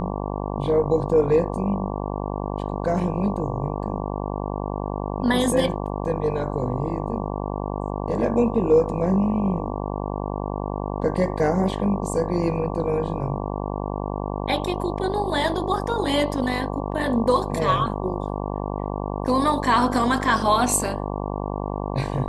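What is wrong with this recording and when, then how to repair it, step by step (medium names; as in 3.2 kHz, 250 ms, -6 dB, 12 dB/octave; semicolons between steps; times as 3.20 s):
buzz 50 Hz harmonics 23 -28 dBFS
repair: de-hum 50 Hz, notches 23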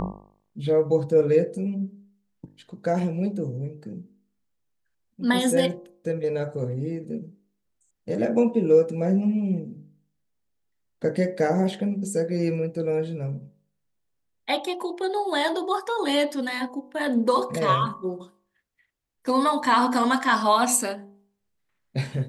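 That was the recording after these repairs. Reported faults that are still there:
nothing left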